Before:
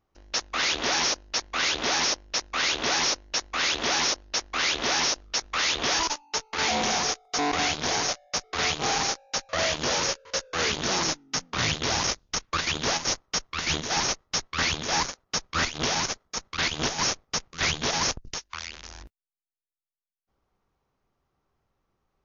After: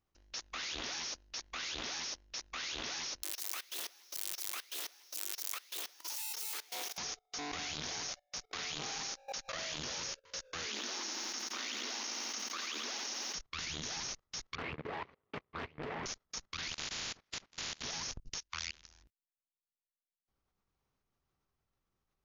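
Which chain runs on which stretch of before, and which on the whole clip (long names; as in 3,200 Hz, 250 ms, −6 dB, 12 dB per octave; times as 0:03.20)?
0:03.23–0:06.98: spike at every zero crossing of −21 dBFS + Butterworth high-pass 320 Hz + compressor whose output falls as the input rises −32 dBFS, ratio −0.5
0:08.51–0:09.79: parametric band 70 Hz −11 dB 1 octave + background raised ahead of every attack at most 140 dB per second
0:10.67–0:13.35: Chebyshev high-pass filter 210 Hz, order 8 + feedback echo at a low word length 87 ms, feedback 80%, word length 9 bits, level −8.5 dB
0:14.55–0:16.06: running median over 25 samples + loudspeaker in its box 100–3,500 Hz, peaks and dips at 180 Hz −4 dB, 430 Hz +8 dB, 1,100 Hz +5 dB, 2,000 Hz +9 dB + highs frequency-modulated by the lows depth 0.58 ms
0:16.71–0:17.82: ceiling on every frequency bin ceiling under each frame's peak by 29 dB + low-pass filter 6,400 Hz + downward compressor 10 to 1, threshold −32 dBFS
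whole clip: parametric band 650 Hz −7.5 dB 3 octaves; output level in coarse steps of 21 dB; low-shelf EQ 180 Hz −3.5 dB; level +1.5 dB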